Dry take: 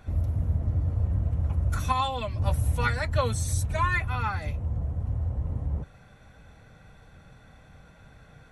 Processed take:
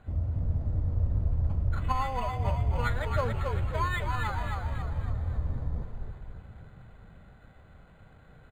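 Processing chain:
low-pass filter 5,300 Hz 12 dB per octave
echo with shifted repeats 274 ms, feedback 50%, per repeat −48 Hz, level −4.5 dB
on a send at −17 dB: convolution reverb RT60 5.9 s, pre-delay 83 ms
on the sum: linearly interpolated sample-rate reduction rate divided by 8×
level −3.5 dB

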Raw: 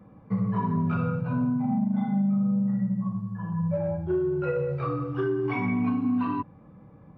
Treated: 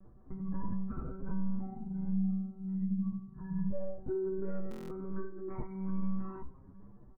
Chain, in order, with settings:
downward compressor 2.5 to 1, threshold −27 dBFS, peak gain reduction 4 dB
Butterworth low-pass 1,900 Hz 48 dB per octave
low-shelf EQ 69 Hz −11.5 dB
convolution reverb RT60 3.2 s, pre-delay 38 ms, DRR 19.5 dB
one-pitch LPC vocoder at 8 kHz 190 Hz
low-shelf EQ 320 Hz +10 dB
tuned comb filter 67 Hz, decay 0.15 s, harmonics all, mix 70%
brickwall limiter −20 dBFS, peak gain reduction 4.5 dB
buffer that repeats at 0:04.69, samples 1,024, times 8
barber-pole flanger 6.5 ms +1.3 Hz
level −4.5 dB

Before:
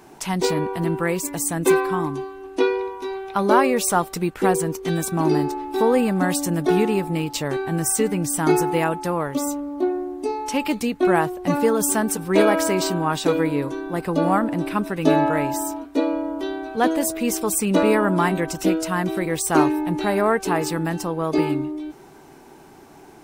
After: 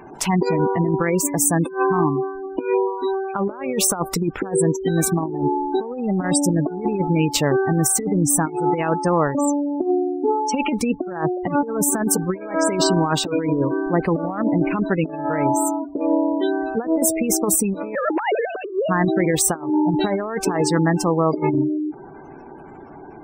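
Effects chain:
0:17.95–0:18.89: three sine waves on the formant tracks
gate on every frequency bin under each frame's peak −20 dB strong
compressor whose output falls as the input rises −23 dBFS, ratio −0.5
level +4 dB

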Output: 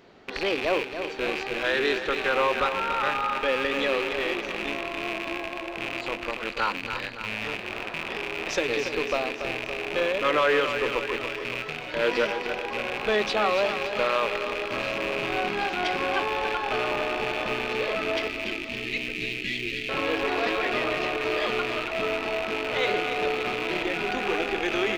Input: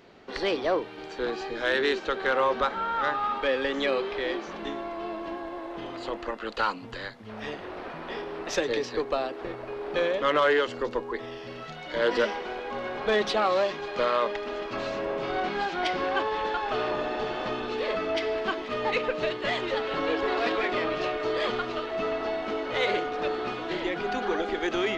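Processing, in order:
loose part that buzzes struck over −45 dBFS, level −19 dBFS
0:18.27–0:19.89: Chebyshev band-stop filter 350–2,100 Hz, order 3
on a send: repeating echo 284 ms, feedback 57%, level −9 dB

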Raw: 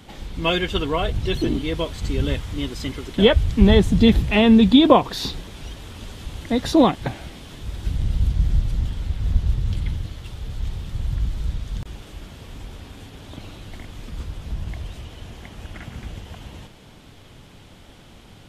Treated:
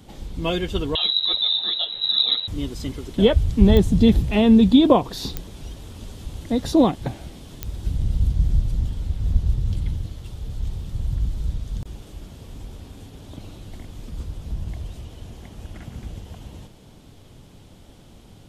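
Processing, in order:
parametric band 1,900 Hz −8.5 dB 2.2 octaves
0:00.95–0:02.48: voice inversion scrambler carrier 3,900 Hz
digital clicks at 0:03.77/0:05.37/0:07.63, −10 dBFS

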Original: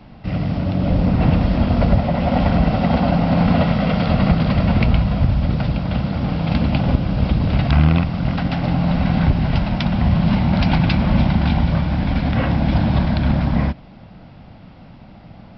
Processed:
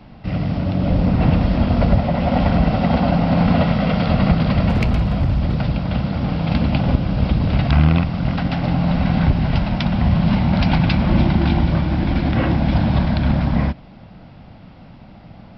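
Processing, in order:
0:04.69–0:05.61: gain into a clipping stage and back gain 12.5 dB
0:11.09–0:12.56: parametric band 340 Hz +12 dB 0.24 octaves

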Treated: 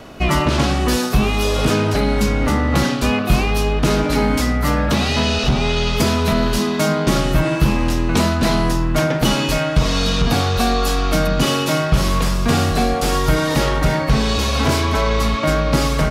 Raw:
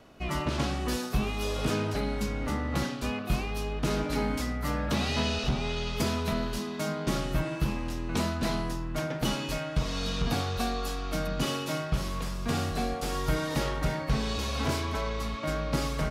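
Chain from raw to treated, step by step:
in parallel at 0 dB: brickwall limiter −24 dBFS, peak gain reduction 7 dB
on the sum: speech leveller 0.5 s
level +8.5 dB

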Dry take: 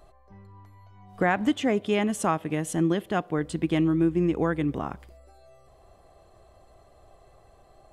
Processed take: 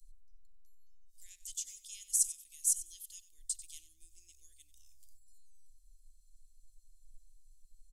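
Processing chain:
inverse Chebyshev band-stop filter 100–1,500 Hz, stop band 70 dB
on a send: repeating echo 94 ms, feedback 17%, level −14.5 dB
on the sum: one half of a high-frequency compander decoder only
level +8.5 dB

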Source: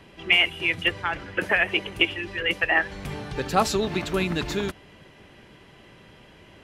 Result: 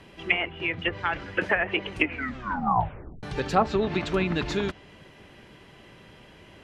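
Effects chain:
0:01.93: tape stop 1.30 s
treble cut that deepens with the level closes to 1,400 Hz, closed at −17 dBFS
0:00.51–0:00.93: high-shelf EQ 3,600 Hz −10.5 dB

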